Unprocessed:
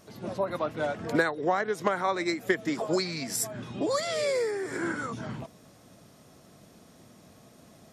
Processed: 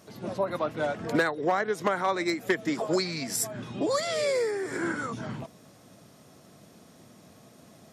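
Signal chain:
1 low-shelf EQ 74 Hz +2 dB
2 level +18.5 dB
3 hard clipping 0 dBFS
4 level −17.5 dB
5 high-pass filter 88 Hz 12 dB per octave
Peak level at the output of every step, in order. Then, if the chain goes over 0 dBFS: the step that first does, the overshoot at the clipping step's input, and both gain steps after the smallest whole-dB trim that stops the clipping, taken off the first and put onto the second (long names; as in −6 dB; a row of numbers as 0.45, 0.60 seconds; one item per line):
−13.0, +5.5, 0.0, −17.5, −14.5 dBFS
step 2, 5.5 dB
step 2 +12.5 dB, step 4 −11.5 dB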